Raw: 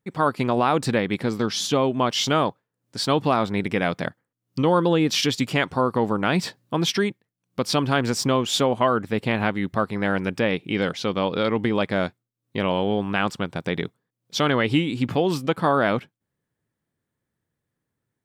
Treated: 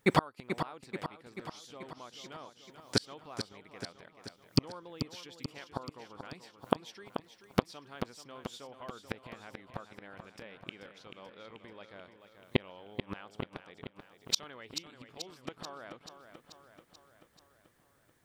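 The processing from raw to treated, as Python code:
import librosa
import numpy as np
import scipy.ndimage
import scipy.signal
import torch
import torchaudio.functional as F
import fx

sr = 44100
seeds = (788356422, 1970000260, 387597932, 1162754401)

y = fx.peak_eq(x, sr, hz=160.0, db=-10.0, octaves=2.1)
y = fx.gate_flip(y, sr, shuts_db=-24.0, range_db=-39)
y = fx.echo_feedback(y, sr, ms=435, feedback_pct=60, wet_db=-9)
y = y * 10.0 ** (13.5 / 20.0)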